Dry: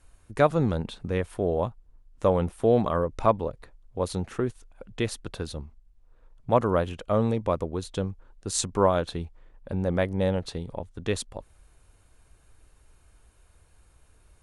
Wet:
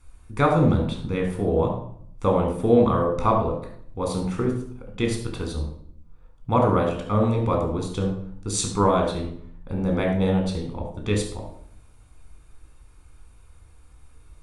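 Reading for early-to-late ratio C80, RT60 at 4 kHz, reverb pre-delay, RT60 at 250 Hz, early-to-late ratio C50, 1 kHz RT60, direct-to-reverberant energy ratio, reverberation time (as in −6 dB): 9.0 dB, 0.50 s, 4 ms, 0.90 s, 5.0 dB, 0.60 s, 1.0 dB, 0.65 s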